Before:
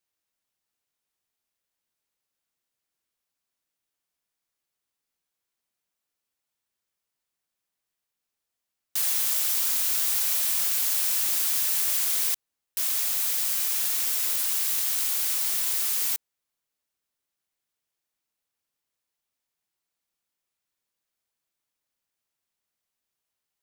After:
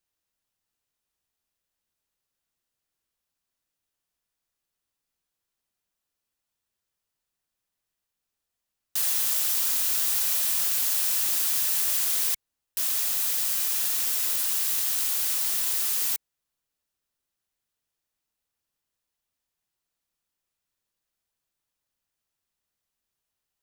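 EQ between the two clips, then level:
low-shelf EQ 110 Hz +9 dB
notch filter 2,200 Hz, Q 20
0.0 dB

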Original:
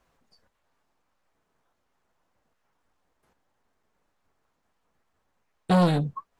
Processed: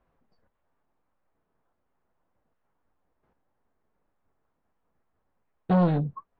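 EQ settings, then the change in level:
head-to-tape spacing loss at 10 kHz 39 dB
0.0 dB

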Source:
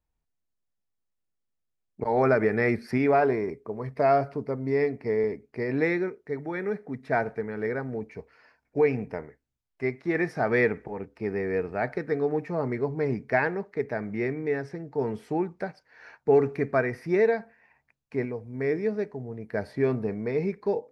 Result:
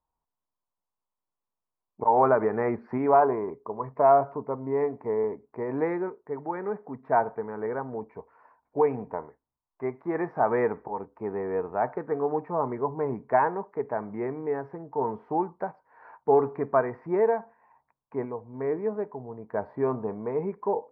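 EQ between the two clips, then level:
low-pass with resonance 1,000 Hz, resonance Q 4.9
low-shelf EQ 170 Hz −7 dB
−2.0 dB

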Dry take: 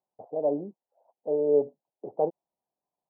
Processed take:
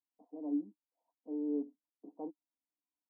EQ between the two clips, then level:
formant filter u
high-pass filter 230 Hz 6 dB per octave
phaser with its sweep stopped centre 560 Hz, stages 8
+5.5 dB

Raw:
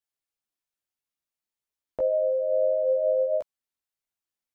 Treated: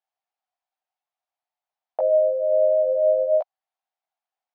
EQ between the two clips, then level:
high-pass with resonance 740 Hz, resonance Q 7.1
high-frequency loss of the air 170 metres
+1.0 dB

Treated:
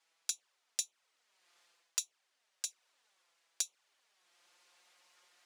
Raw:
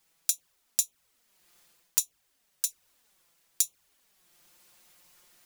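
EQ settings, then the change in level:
high-pass filter 560 Hz 12 dB per octave
high-frequency loss of the air 80 metres
−1.0 dB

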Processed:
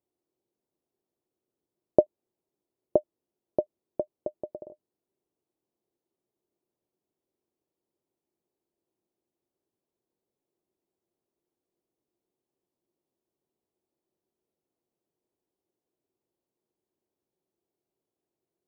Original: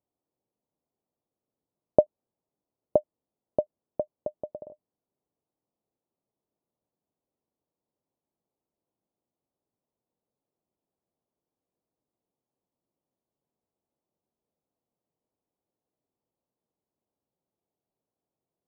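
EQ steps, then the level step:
parametric band 360 Hz +11.5 dB 0.39 octaves
−2.0 dB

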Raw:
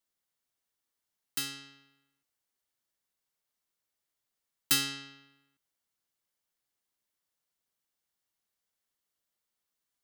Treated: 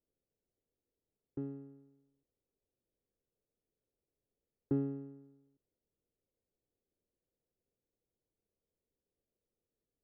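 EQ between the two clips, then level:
transistor ladder low-pass 540 Hz, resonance 50%
low-shelf EQ 120 Hz +9.5 dB
+12.0 dB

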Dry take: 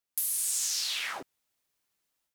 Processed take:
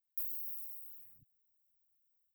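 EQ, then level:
inverse Chebyshev band-stop filter 390–9,000 Hz, stop band 60 dB
low-shelf EQ 290 Hz −10.5 dB
+9.5 dB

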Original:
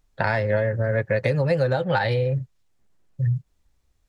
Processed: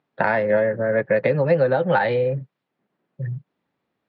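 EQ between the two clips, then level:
high-pass filter 170 Hz 24 dB per octave
high-frequency loss of the air 390 metres
+5.5 dB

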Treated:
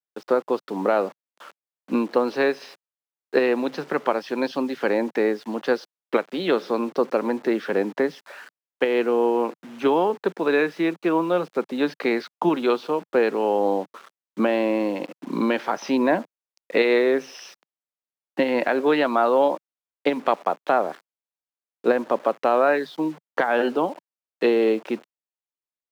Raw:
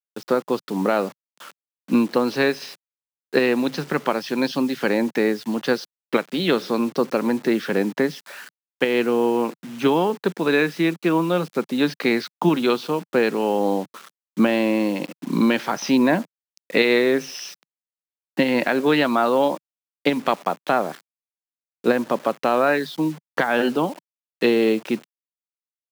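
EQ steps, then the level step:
high-pass filter 490 Hz 12 dB per octave
spectral tilt −3.5 dB per octave
0.0 dB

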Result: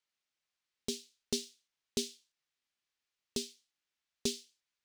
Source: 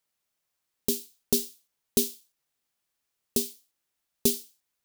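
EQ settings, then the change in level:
high-frequency loss of the air 110 metres
low-shelf EQ 480 Hz −11 dB
parametric band 800 Hz −6.5 dB 2 octaves
+1.0 dB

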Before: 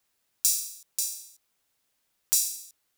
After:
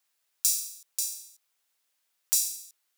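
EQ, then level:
high-pass filter 890 Hz 6 dB per octave
−1.0 dB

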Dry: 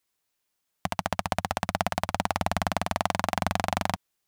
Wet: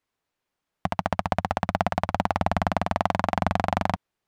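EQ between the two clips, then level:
low-pass filter 1,500 Hz 6 dB per octave
+4.5 dB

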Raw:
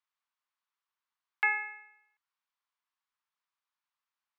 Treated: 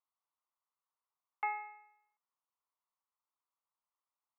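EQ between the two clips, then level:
Savitzky-Golay smoothing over 65 samples
high-pass filter 530 Hz
+1.5 dB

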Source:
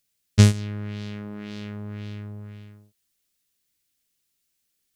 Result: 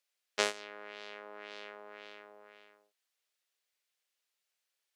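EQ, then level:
high-pass filter 510 Hz 24 dB per octave
low-pass filter 2,300 Hz 6 dB per octave
0.0 dB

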